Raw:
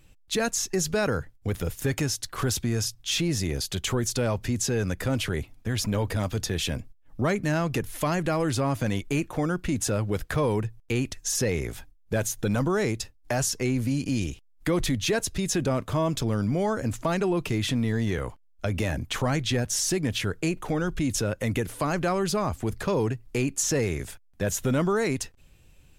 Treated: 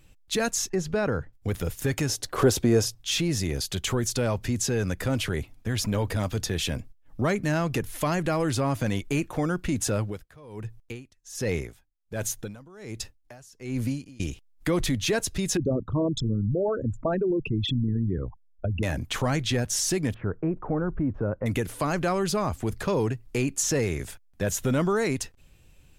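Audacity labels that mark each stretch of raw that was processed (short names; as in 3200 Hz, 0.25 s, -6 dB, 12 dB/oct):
0.690000	1.330000	LPF 1700 Hz 6 dB/oct
2.090000	2.980000	bell 470 Hz +12.5 dB 1.9 oct
9.990000	14.200000	dB-linear tremolo 1.3 Hz, depth 25 dB
15.570000	18.830000	formant sharpening exponent 3
20.140000	21.460000	LPF 1300 Hz 24 dB/oct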